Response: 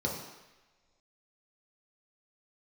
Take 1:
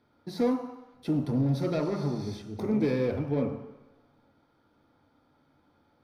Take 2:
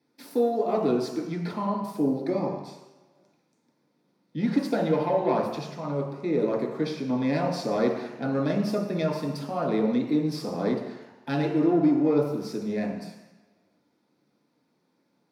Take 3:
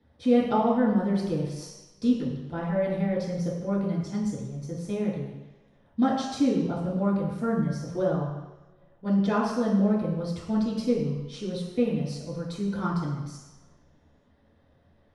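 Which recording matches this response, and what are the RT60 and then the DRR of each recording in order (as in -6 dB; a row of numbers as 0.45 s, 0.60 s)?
2; no single decay rate, no single decay rate, no single decay rate; 2.0 dB, -2.5 dB, -7.0 dB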